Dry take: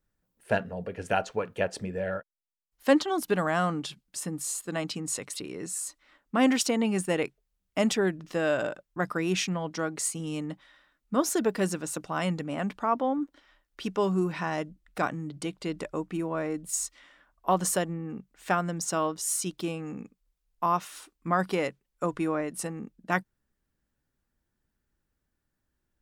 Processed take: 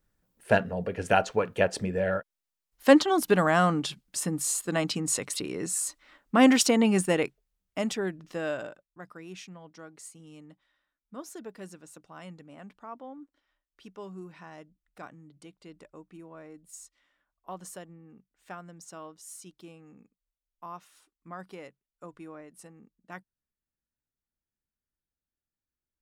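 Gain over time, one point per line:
6.96 s +4 dB
7.86 s -5 dB
8.49 s -5 dB
8.98 s -16 dB

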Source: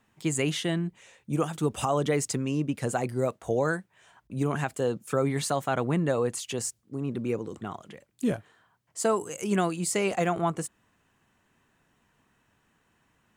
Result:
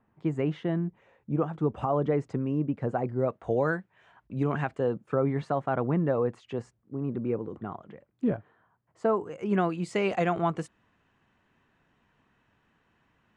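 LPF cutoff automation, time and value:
3.11 s 1200 Hz
3.52 s 2500 Hz
4.59 s 2500 Hz
5.02 s 1400 Hz
9.19 s 1400 Hz
10.17 s 3700 Hz

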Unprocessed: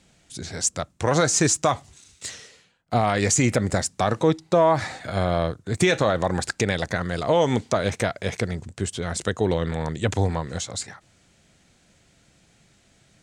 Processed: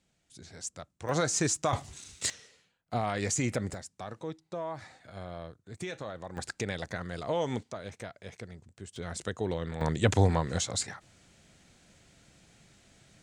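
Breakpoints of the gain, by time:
-15.5 dB
from 1.09 s -8.5 dB
from 1.73 s +3 dB
from 2.3 s -10 dB
from 3.74 s -19 dB
from 6.37 s -11 dB
from 7.63 s -18 dB
from 8.96 s -10 dB
from 9.81 s -1 dB

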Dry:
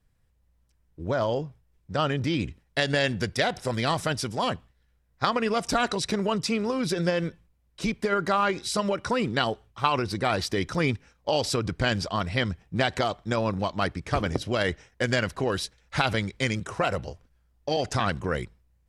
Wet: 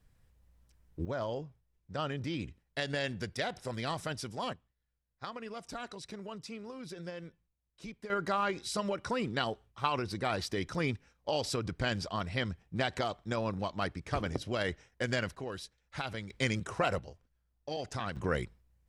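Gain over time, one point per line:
+2 dB
from 1.05 s -10 dB
from 4.53 s -17.5 dB
from 8.1 s -7.5 dB
from 15.35 s -13.5 dB
from 16.3 s -4.5 dB
from 16.99 s -11.5 dB
from 18.16 s -3.5 dB

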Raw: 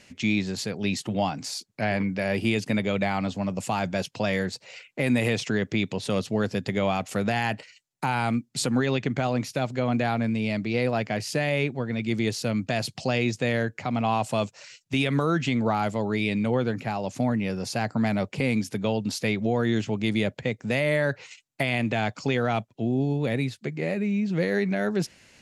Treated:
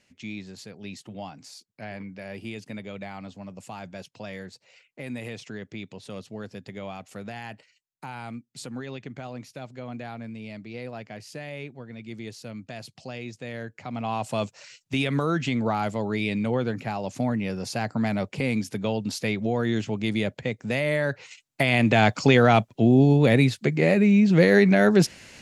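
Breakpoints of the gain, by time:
13.41 s -12 dB
14.44 s -1 dB
21.23 s -1 dB
22.03 s +8 dB

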